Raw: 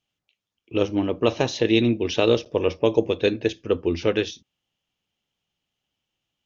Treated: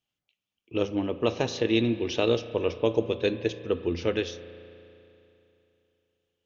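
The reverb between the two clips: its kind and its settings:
spring reverb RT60 3 s, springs 35 ms, chirp 40 ms, DRR 12.5 dB
level −5 dB

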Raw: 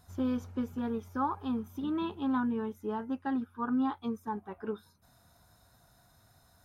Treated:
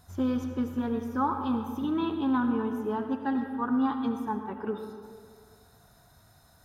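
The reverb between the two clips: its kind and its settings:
comb and all-pass reverb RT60 1.9 s, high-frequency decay 0.55×, pre-delay 40 ms, DRR 6 dB
level +3.5 dB

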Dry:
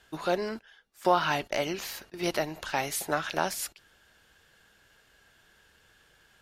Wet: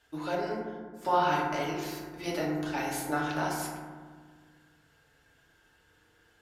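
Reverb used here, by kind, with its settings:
feedback delay network reverb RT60 1.6 s, low-frequency decay 1.55×, high-frequency decay 0.3×, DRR −4.5 dB
level −8.5 dB

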